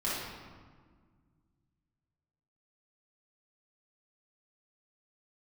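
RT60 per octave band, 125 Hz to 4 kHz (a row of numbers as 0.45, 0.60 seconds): 3.0, 2.5, 1.7, 1.6, 1.3, 1.0 seconds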